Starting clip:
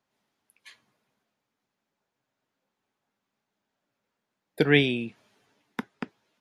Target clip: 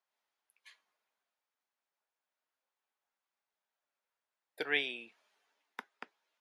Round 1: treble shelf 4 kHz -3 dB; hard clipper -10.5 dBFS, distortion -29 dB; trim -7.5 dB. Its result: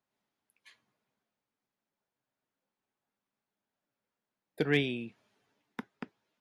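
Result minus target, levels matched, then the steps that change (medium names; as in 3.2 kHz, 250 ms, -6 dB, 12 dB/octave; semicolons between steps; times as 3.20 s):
500 Hz band +4.5 dB
add first: high-pass 690 Hz 12 dB/octave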